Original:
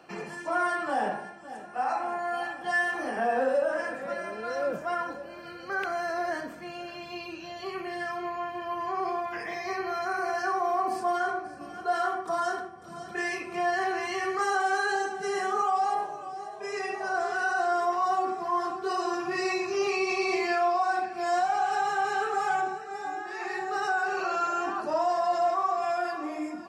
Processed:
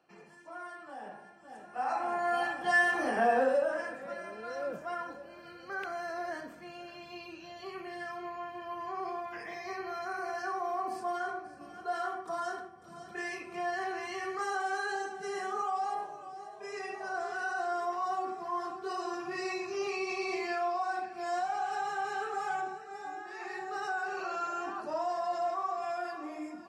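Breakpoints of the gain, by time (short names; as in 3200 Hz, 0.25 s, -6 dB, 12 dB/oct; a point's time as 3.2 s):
1.01 s -17 dB
1.41 s -9.5 dB
2.29 s +1 dB
3.26 s +1 dB
3.99 s -7 dB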